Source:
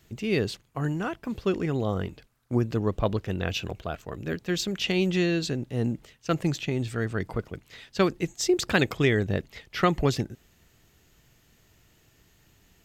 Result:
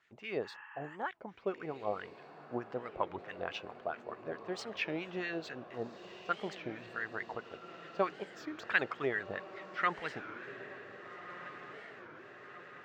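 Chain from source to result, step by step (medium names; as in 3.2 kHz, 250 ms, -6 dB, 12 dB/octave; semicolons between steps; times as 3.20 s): careless resampling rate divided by 2×, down filtered, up hold; LFO band-pass sine 4.6 Hz 630–2000 Hz; echo that smears into a reverb 1557 ms, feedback 62%, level -12 dB; spectral replace 0.46–0.93 s, 830–3300 Hz before; warped record 33 1/3 rpm, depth 250 cents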